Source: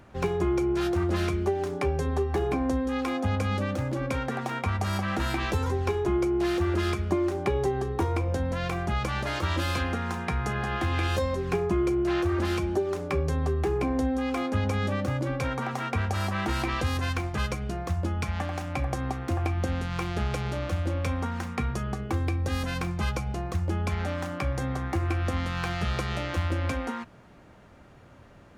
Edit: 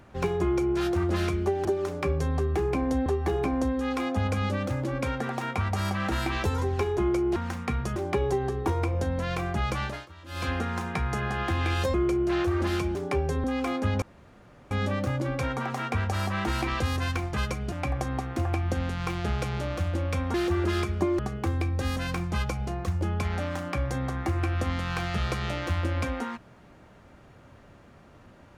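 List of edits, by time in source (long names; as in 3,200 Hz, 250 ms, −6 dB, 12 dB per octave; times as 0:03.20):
0:01.65–0:02.14: swap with 0:12.73–0:14.14
0:06.44–0:07.29: swap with 0:21.26–0:21.86
0:09.14–0:09.84: duck −20.5 dB, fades 0.25 s
0:11.27–0:11.72: remove
0:14.72: splice in room tone 0.69 s
0:17.73–0:18.64: remove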